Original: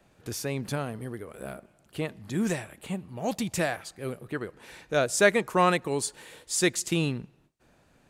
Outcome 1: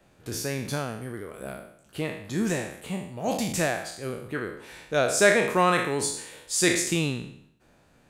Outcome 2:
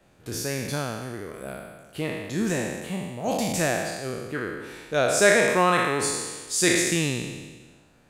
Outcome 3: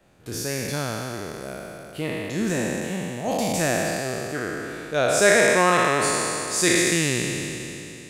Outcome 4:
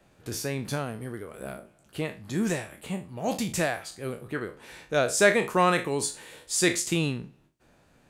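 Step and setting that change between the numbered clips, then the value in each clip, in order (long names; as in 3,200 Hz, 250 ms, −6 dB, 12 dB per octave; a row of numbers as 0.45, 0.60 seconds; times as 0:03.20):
peak hold with a decay on every bin, RT60: 0.65, 1.37, 3.05, 0.3 seconds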